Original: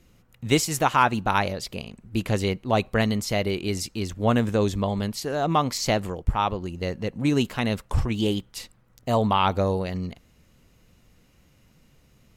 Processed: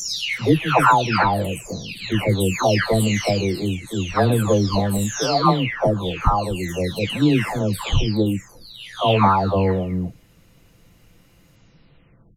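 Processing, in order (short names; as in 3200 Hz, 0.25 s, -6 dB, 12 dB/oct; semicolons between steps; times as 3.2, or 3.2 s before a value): spectral delay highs early, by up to 0.811 s; gain +7 dB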